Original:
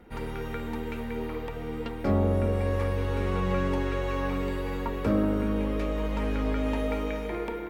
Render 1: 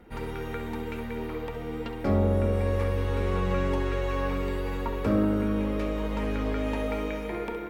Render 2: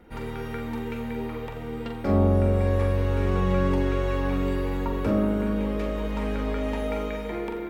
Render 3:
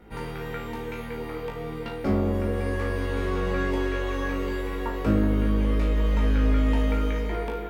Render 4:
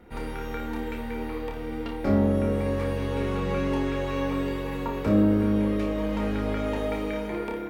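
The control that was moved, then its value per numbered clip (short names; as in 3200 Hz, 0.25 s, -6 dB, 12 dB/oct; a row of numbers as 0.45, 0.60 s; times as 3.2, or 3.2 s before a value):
flutter echo, walls apart: 11.5, 7.4, 3.2, 5 m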